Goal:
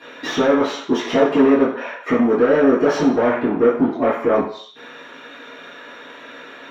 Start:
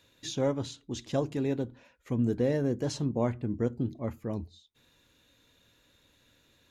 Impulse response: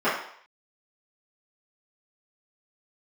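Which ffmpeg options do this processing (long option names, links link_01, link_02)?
-filter_complex "[0:a]acompressor=threshold=-33dB:ratio=4,asplit=2[link_01][link_02];[link_02]highpass=frequency=720:poles=1,volume=35dB,asoftclip=type=tanh:threshold=-11dB[link_03];[link_01][link_03]amix=inputs=2:normalize=0,lowpass=frequency=2400:poles=1,volume=-6dB[link_04];[1:a]atrim=start_sample=2205,asetrate=48510,aresample=44100[link_05];[link_04][link_05]afir=irnorm=-1:irlink=0,volume=-11dB"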